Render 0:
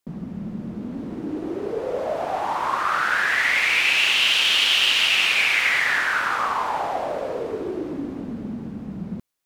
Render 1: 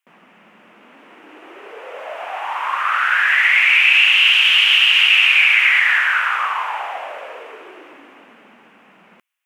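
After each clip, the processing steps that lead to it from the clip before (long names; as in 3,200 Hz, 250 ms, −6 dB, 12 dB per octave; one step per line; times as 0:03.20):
high-pass filter 1,100 Hz 12 dB per octave
high shelf with overshoot 3,400 Hz −7 dB, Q 3
in parallel at 0 dB: brickwall limiter −10 dBFS, peak gain reduction 7 dB
on the sum: level −1.5 dB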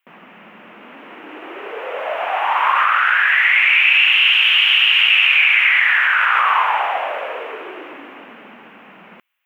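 flat-topped bell 7,100 Hz −12 dB
in parallel at −3 dB: compressor whose output falls as the input rises −21 dBFS, ratio −0.5
on the sum: level −1 dB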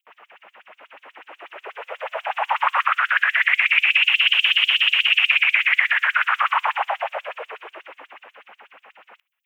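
auto-filter high-pass sine 8.2 Hz 530–7,700 Hz
level −6 dB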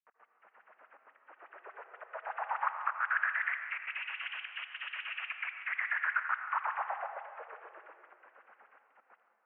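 gate pattern "x.x.xxxxx" 155 BPM −24 dB
transistor ladder low-pass 1,900 Hz, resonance 40%
convolution reverb RT60 1.9 s, pre-delay 74 ms, DRR 6 dB
level −8 dB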